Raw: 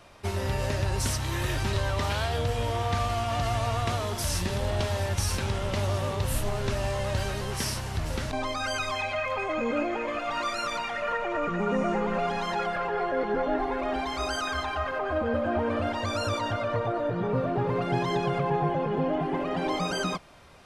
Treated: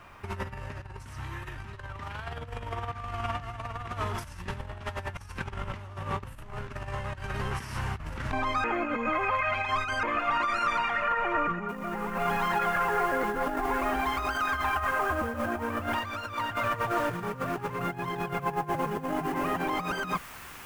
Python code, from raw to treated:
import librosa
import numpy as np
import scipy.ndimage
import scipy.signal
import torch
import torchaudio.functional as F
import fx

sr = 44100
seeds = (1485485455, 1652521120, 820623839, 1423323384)

y = fx.noise_floor_step(x, sr, seeds[0], at_s=11.69, before_db=-67, after_db=-43, tilt_db=0.0)
y = fx.peak_eq(y, sr, hz=2800.0, db=5.0, octaves=2.6, at=(15.93, 17.79))
y = fx.edit(y, sr, fx.reverse_span(start_s=8.64, length_s=1.39), tone=tone)
y = fx.peak_eq(y, sr, hz=610.0, db=-14.0, octaves=1.3)
y = fx.over_compress(y, sr, threshold_db=-34.0, ratio=-0.5)
y = fx.curve_eq(y, sr, hz=(270.0, 750.0, 1200.0, 2800.0, 3900.0), db=(0, 9, 8, -1, -10))